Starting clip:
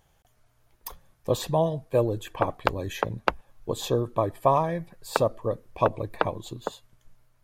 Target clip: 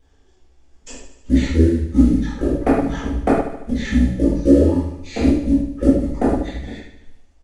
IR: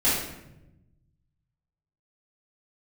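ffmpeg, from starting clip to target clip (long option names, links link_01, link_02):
-filter_complex "[0:a]acrusher=bits=7:mode=log:mix=0:aa=0.000001,asetrate=22696,aresample=44100,atempo=1.94306,aecho=1:1:75|150|225|300|375|450|525:0.316|0.18|0.103|0.0586|0.0334|0.019|0.0108[link_01];[1:a]atrim=start_sample=2205,atrim=end_sample=6174[link_02];[link_01][link_02]afir=irnorm=-1:irlink=0,volume=-8dB"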